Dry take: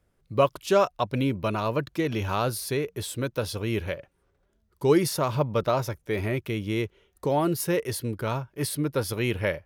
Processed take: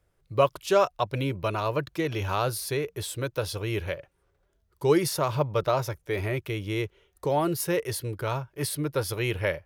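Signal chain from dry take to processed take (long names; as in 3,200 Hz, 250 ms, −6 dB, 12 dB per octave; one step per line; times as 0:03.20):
parametric band 230 Hz −15 dB 0.37 octaves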